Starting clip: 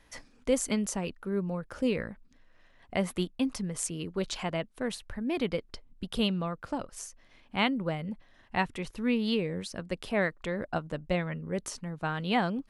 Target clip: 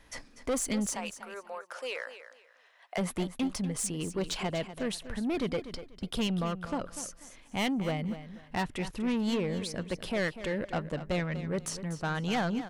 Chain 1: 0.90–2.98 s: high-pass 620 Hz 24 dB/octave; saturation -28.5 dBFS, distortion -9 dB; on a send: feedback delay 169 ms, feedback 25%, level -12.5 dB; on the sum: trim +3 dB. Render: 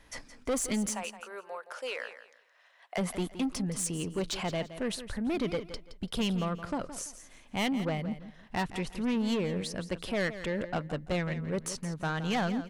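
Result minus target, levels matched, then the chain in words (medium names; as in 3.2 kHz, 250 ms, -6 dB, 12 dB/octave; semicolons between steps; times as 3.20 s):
echo 75 ms early
0.90–2.98 s: high-pass 620 Hz 24 dB/octave; saturation -28.5 dBFS, distortion -9 dB; on a send: feedback delay 244 ms, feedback 25%, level -12.5 dB; on the sum: trim +3 dB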